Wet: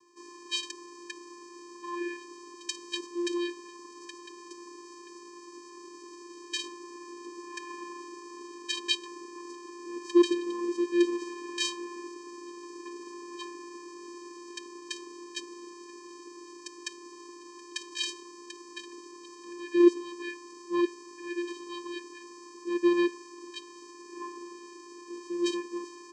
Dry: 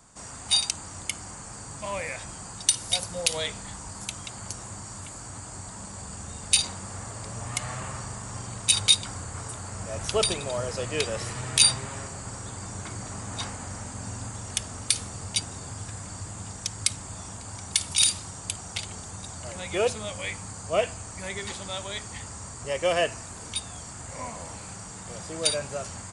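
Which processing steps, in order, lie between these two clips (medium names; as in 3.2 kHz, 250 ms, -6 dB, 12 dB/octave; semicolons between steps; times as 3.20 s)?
vocoder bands 8, square 348 Hz; trim -1 dB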